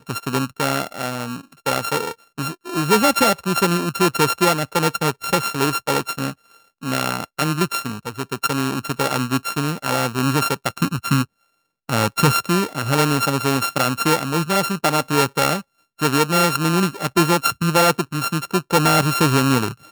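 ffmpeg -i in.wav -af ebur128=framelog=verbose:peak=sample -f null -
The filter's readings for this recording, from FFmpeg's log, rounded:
Integrated loudness:
  I:         -19.7 LUFS
  Threshold: -29.9 LUFS
Loudness range:
  LRA:         4.8 LU
  Threshold: -40.0 LUFS
  LRA low:   -22.8 LUFS
  LRA high:  -18.0 LUFS
Sample peak:
  Peak:       -4.8 dBFS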